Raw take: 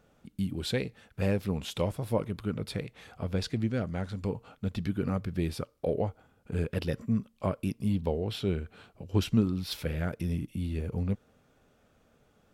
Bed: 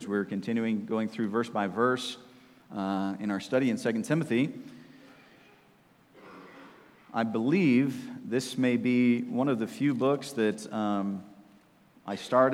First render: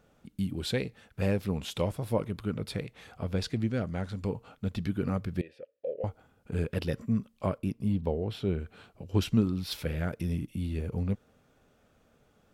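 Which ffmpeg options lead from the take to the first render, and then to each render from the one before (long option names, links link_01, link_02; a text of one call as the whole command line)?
ffmpeg -i in.wav -filter_complex "[0:a]asettb=1/sr,asplit=3[link_01][link_02][link_03];[link_01]atrim=end=5.414[link_04];[link_02]atrim=start=5.41:end=6.04,asetpts=PTS-STARTPTS,afade=type=in:duration=0.004:curve=qsin,afade=type=out:start_time=0.626:duration=0.004:curve=qsin,asplit=3[link_05][link_06][link_07];[link_05]bandpass=frequency=530:width_type=q:width=8,volume=0dB[link_08];[link_06]bandpass=frequency=1840:width_type=q:width=8,volume=-6dB[link_09];[link_07]bandpass=frequency=2480:width_type=q:width=8,volume=-9dB[link_10];[link_08][link_09][link_10]amix=inputs=3:normalize=0[link_11];[link_03]atrim=start=6.036[link_12];[link_04][link_11]acrossfade=duration=0.004:curve1=hsin:curve2=qsin[link_13];[link_13][link_12]acrossfade=duration=0.004:curve1=qsin:curve2=hsin,asettb=1/sr,asplit=3[link_14][link_15][link_16];[link_14]atrim=end=7.584[link_17];[link_15]atrim=start=7.58:end=8.6,asetpts=PTS-STARTPTS,afade=type=in:duration=0.004:curve=qsin,afade=type=out:start_time=1.016:duration=0.004:curve=qsin,highshelf=frequency=2100:gain=-7.5[link_18];[link_16]atrim=start=8.596[link_19];[link_17][link_18]acrossfade=duration=0.004:curve1=hsin:curve2=qsin[link_20];[link_20][link_19]acrossfade=duration=0.004:curve1=qsin:curve2=hsin" out.wav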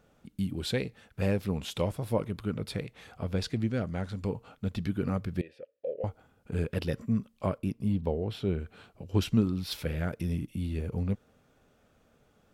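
ffmpeg -i in.wav -af anull out.wav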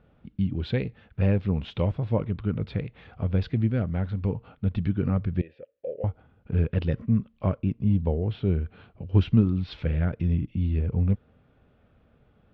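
ffmpeg -i in.wav -af "lowpass=frequency=3400:width=0.5412,lowpass=frequency=3400:width=1.3066,equalizer=frequency=67:width=0.39:gain=9.5" out.wav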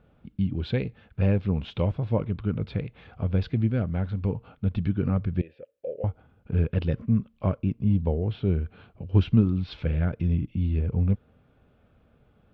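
ffmpeg -i in.wav -af "bandreject=frequency=1900:width=16" out.wav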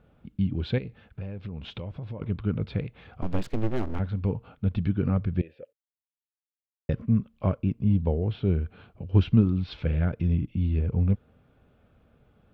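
ffmpeg -i in.wav -filter_complex "[0:a]asettb=1/sr,asplit=3[link_01][link_02][link_03];[link_01]atrim=end=0.784[link_04];[link_02]atrim=start=0.78:end=2.22,asetpts=PTS-STARTPTS,afade=type=in:duration=0.004:curve=qsin,afade=type=out:start_time=1.436:duration=0.004:curve=qsin,acompressor=threshold=-32dB:ratio=10:attack=3.2:release=140:knee=1:detection=peak[link_05];[link_03]atrim=start=2.216[link_06];[link_04][link_05]acrossfade=duration=0.004:curve1=hsin:curve2=qsin[link_07];[link_07][link_06]acrossfade=duration=0.004:curve1=qsin:curve2=hsin,asplit=3[link_08][link_09][link_10];[link_08]afade=type=out:start_time=3.21:duration=0.02[link_11];[link_09]aeval=exprs='abs(val(0))':channel_layout=same,afade=type=in:start_time=3.21:duration=0.02,afade=type=out:start_time=3.98:duration=0.02[link_12];[link_10]afade=type=in:start_time=3.98:duration=0.02[link_13];[link_11][link_12][link_13]amix=inputs=3:normalize=0,asplit=3[link_14][link_15][link_16];[link_14]atrim=end=5.73,asetpts=PTS-STARTPTS,afade=type=out:start_time=5.726:duration=0.004:curve=hsin[link_17];[link_15]atrim=start=5.73:end=6.89,asetpts=PTS-STARTPTS,volume=0[link_18];[link_16]atrim=start=6.89,asetpts=PTS-STARTPTS,afade=type=in:duration=0.004:curve=hsin[link_19];[link_17][link_18][link_19]concat=n=3:v=0:a=1" out.wav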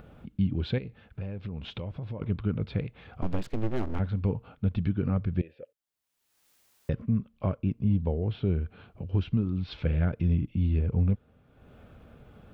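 ffmpeg -i in.wav -af "acompressor=mode=upward:threshold=-41dB:ratio=2.5,alimiter=limit=-17dB:level=0:latency=1:release=394" out.wav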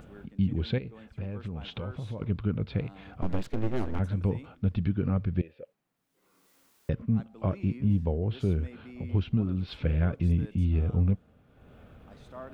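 ffmpeg -i in.wav -i bed.wav -filter_complex "[1:a]volume=-21dB[link_01];[0:a][link_01]amix=inputs=2:normalize=0" out.wav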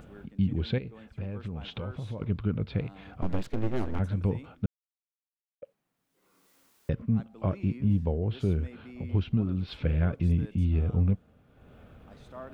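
ffmpeg -i in.wav -filter_complex "[0:a]asplit=3[link_01][link_02][link_03];[link_01]atrim=end=4.66,asetpts=PTS-STARTPTS,afade=type=out:start_time=4.656:duration=0.004:curve=hsin[link_04];[link_02]atrim=start=4.66:end=5.62,asetpts=PTS-STARTPTS,volume=0[link_05];[link_03]atrim=start=5.62,asetpts=PTS-STARTPTS,afade=type=in:duration=0.004:curve=hsin[link_06];[link_04][link_05][link_06]concat=n=3:v=0:a=1" out.wav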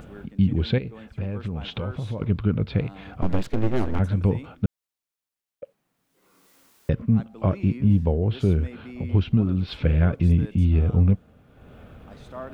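ffmpeg -i in.wav -af "volume=6.5dB" out.wav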